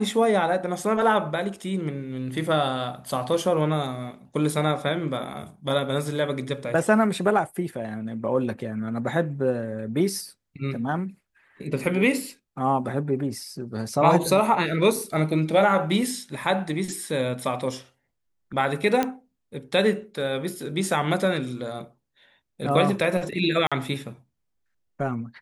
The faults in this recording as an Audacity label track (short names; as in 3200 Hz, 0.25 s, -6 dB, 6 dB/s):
19.030000	19.030000	pop -10 dBFS
23.670000	23.720000	gap 46 ms